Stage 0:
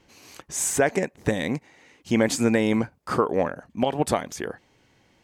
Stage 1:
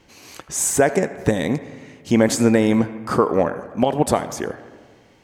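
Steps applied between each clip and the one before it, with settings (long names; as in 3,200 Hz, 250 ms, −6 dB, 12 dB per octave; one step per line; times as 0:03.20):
dynamic equaliser 2,500 Hz, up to −5 dB, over −43 dBFS, Q 0.79
delay with a band-pass on its return 81 ms, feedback 64%, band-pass 1,300 Hz, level −14.5 dB
on a send at −16.5 dB: convolution reverb RT60 1.8 s, pre-delay 35 ms
on the sum: level +5.5 dB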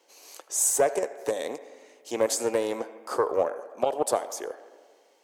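high-pass filter 470 Hz 24 dB per octave
parametric band 1,900 Hz −12 dB 2.5 octaves
highs frequency-modulated by the lows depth 0.16 ms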